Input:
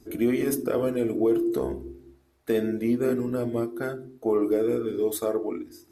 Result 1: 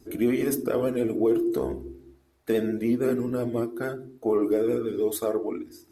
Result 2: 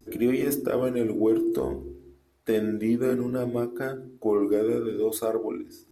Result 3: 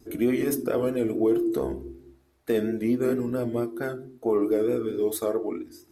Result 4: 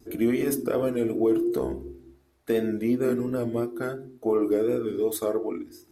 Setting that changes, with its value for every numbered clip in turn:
vibrato, rate: 13, 0.62, 4.5, 2.8 Hz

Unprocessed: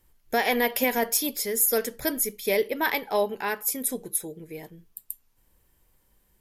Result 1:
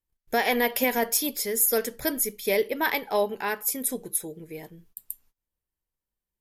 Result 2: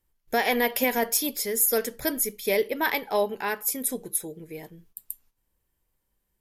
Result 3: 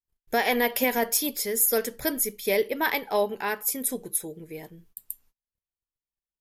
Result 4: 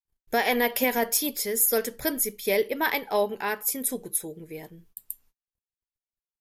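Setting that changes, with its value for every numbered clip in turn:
gate, range: -24, -11, -37, -53 dB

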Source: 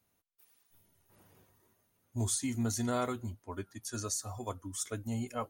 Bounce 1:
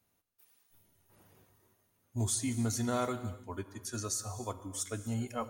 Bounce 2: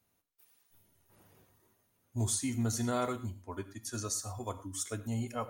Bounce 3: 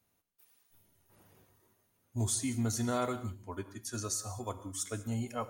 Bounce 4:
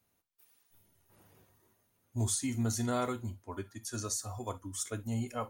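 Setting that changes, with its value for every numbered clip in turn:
non-linear reverb, gate: 330, 140, 220, 80 ms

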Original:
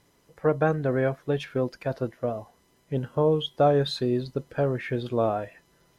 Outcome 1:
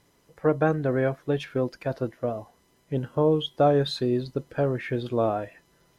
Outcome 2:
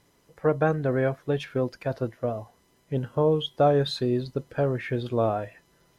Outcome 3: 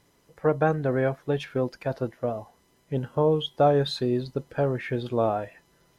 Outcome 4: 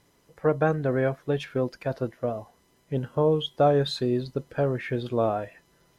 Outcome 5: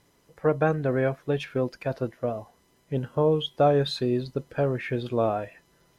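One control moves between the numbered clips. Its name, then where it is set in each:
dynamic EQ, frequency: 310, 110, 840, 7400, 2500 Hz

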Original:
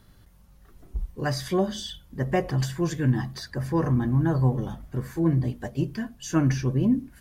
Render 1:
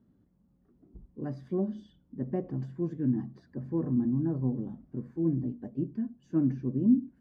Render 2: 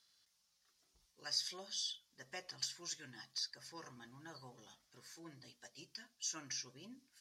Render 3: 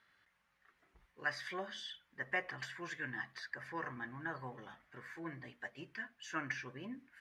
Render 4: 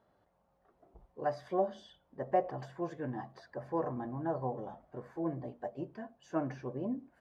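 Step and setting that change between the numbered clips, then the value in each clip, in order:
band-pass, frequency: 250, 5200, 1900, 670 Hz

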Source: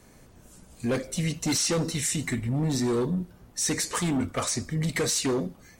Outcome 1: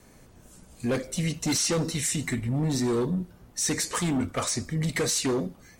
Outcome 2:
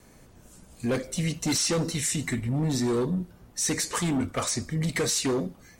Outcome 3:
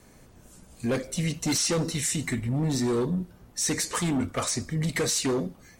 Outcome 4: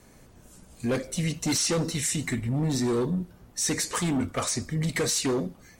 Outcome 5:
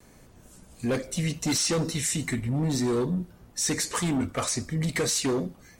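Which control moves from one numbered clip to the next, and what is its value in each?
vibrato, rate: 2.6, 1.7, 6.6, 16, 0.48 Hz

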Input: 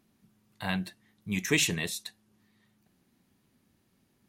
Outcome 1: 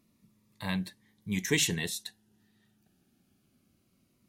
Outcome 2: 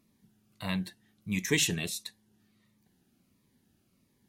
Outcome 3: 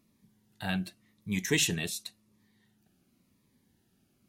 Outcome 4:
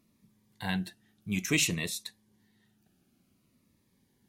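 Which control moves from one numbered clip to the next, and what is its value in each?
cascading phaser, rate: 0.22, 1.5, 0.91, 0.56 Hz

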